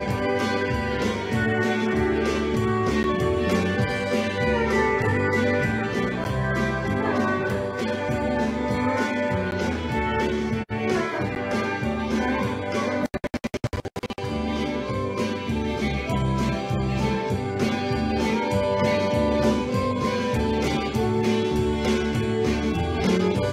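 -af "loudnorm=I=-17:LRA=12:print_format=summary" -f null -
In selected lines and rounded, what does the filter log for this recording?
Input Integrated:    -24.2 LUFS
Input True Peak:      -9.6 dBTP
Input LRA:             3.6 LU
Input Threshold:     -34.2 LUFS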